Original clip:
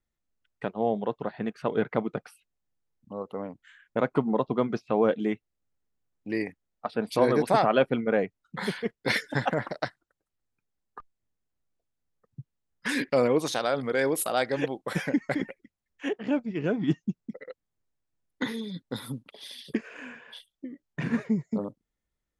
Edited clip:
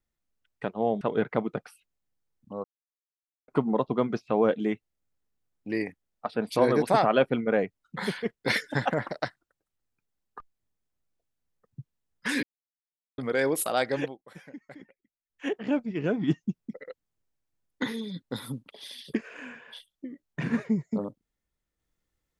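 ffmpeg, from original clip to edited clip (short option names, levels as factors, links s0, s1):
-filter_complex "[0:a]asplit=8[s0][s1][s2][s3][s4][s5][s6][s7];[s0]atrim=end=1.012[s8];[s1]atrim=start=1.608:end=3.24,asetpts=PTS-STARTPTS,afade=t=out:st=1.628:d=0.004:c=hsin[s9];[s2]atrim=start=3.24:end=4.08,asetpts=PTS-STARTPTS,volume=0[s10];[s3]atrim=start=4.08:end=13.03,asetpts=PTS-STARTPTS,afade=t=in:d=0.004:c=hsin,afade=t=out:st=8.946:d=0.004:c=hsin[s11];[s4]atrim=start=13.03:end=13.78,asetpts=PTS-STARTPTS,volume=0[s12];[s5]atrim=start=13.78:end=14.78,asetpts=PTS-STARTPTS,afade=t=in:d=0.004:c=hsin,afade=t=out:st=0.8:d=0.2:silence=0.11885[s13];[s6]atrim=start=14.78:end=15.88,asetpts=PTS-STARTPTS,volume=0.119[s14];[s7]atrim=start=15.88,asetpts=PTS-STARTPTS,afade=t=in:d=0.2:silence=0.11885[s15];[s9][s10][s11][s12][s13][s14][s15]concat=n=7:v=0:a=1[s16];[s8][s16]acrossfade=d=0.004:c1=hsin:c2=hsin"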